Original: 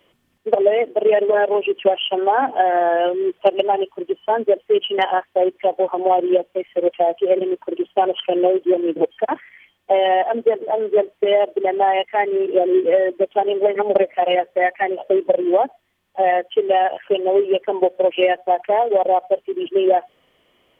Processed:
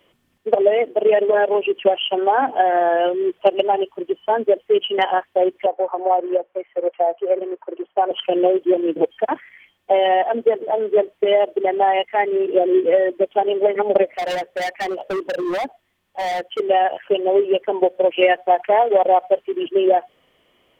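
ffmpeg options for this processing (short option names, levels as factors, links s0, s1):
-filter_complex "[0:a]asettb=1/sr,asplit=3[s0][s1][s2];[s0]atrim=end=5.664[s3];[s1]atrim=start=5.66:end=8.11,asetpts=PTS-STARTPTS,afade=t=in:d=0.004:c=qsin,afade=t=out:st=2.446:d=0.004:c=qsin,acrossover=split=410 2100:gain=0.158 1 0.0794[s4][s5][s6];[s4][s5][s6]amix=inputs=3:normalize=0[s7];[s2]atrim=start=8.106[s8];[s3][s7]acrossfade=d=0.004:c1=hsin:c2=qsin[s9];[s9][s8]acrossfade=d=0.004:c1=qsin:c2=hsin,asettb=1/sr,asplit=3[s10][s11][s12];[s10]atrim=end=14.114[s13];[s11]atrim=start=14.11:end=16.6,asetpts=PTS-STARTPTS,afade=t=in:d=0.004:c=qsin,afade=t=out:st=2.486:d=0.004:c=qsin,volume=10.6,asoftclip=hard,volume=0.0944[s14];[s12]atrim=start=16.596[s15];[s13][s14]acrossfade=d=0.004:c1=hsin:c2=qsin[s16];[s16][s15]acrossfade=d=0.004:c1=qsin:c2=hsin,asettb=1/sr,asplit=3[s17][s18][s19];[s17]atrim=end=18.214[s20];[s18]atrim=start=18.21:end=19.66,asetpts=PTS-STARTPTS,afade=t=in:d=0.004:c=qsin,afade=t=out:st=1.446:d=0.004:c=qsin,equalizer=f=1700:t=o:w=2.2:g=4.5[s21];[s19]atrim=start=19.656[s22];[s20][s21]acrossfade=d=0.004:c1=hsin:c2=qsin[s23];[s23][s22]acrossfade=d=0.004:c1=qsin:c2=hsin"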